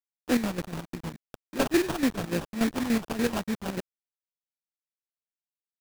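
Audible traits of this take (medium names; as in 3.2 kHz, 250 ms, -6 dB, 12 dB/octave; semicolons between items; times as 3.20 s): a quantiser's noise floor 6-bit, dither none; chopped level 6.9 Hz, depth 65%, duty 55%; phasing stages 2, 3.5 Hz, lowest notch 430–1400 Hz; aliases and images of a low sample rate 2.1 kHz, jitter 20%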